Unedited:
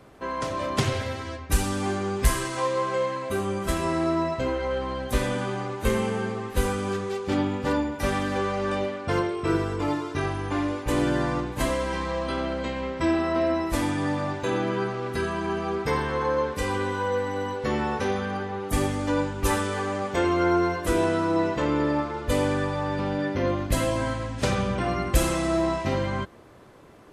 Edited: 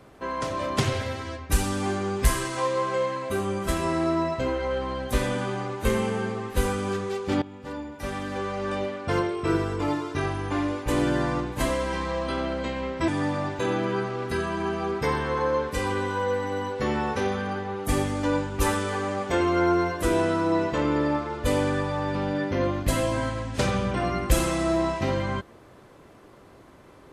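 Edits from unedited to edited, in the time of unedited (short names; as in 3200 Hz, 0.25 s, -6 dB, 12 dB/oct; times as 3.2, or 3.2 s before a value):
7.42–9.15 fade in, from -17 dB
13.08–13.92 cut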